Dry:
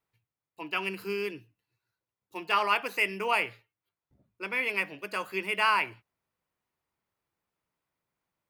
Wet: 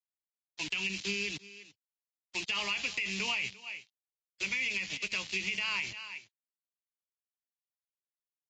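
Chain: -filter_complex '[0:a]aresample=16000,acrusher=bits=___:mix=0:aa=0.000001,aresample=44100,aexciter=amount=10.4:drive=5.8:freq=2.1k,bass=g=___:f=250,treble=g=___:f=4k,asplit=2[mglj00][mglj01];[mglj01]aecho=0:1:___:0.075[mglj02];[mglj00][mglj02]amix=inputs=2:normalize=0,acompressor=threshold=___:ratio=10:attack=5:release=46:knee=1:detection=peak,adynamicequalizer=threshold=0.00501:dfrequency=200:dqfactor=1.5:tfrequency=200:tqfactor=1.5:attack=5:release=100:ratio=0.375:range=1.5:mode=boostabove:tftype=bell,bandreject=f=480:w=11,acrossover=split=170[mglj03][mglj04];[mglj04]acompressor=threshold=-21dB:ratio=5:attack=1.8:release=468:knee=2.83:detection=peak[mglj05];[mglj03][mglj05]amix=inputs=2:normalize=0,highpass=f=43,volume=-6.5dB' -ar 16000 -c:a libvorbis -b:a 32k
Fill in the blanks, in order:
6, 9, -11, 343, -16dB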